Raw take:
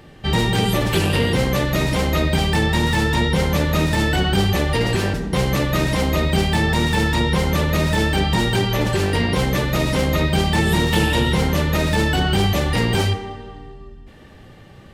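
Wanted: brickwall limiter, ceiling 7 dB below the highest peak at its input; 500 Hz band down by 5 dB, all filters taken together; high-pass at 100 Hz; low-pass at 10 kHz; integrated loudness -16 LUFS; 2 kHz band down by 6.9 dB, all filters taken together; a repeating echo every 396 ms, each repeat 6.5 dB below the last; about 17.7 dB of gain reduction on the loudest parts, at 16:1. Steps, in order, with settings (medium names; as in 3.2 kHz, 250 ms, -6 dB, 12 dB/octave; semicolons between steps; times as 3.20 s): high-pass 100 Hz; low-pass 10 kHz; peaking EQ 500 Hz -6 dB; peaking EQ 2 kHz -8 dB; compression 16:1, threshold -35 dBFS; peak limiter -30.5 dBFS; feedback delay 396 ms, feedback 47%, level -6.5 dB; trim +23.5 dB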